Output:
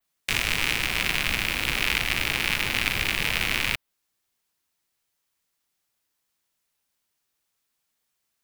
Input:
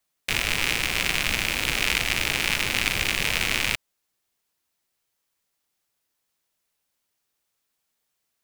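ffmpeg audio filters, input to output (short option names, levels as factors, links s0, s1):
-filter_complex "[0:a]adynamicequalizer=threshold=0.00891:dfrequency=7100:dqfactor=1.1:tfrequency=7100:tqfactor=1.1:attack=5:release=100:ratio=0.375:range=3:mode=cutabove:tftype=bell,acrossover=split=510|1500[s0][s1][s2];[s0]acrusher=samples=33:mix=1:aa=0.000001[s3];[s3][s1][s2]amix=inputs=3:normalize=0"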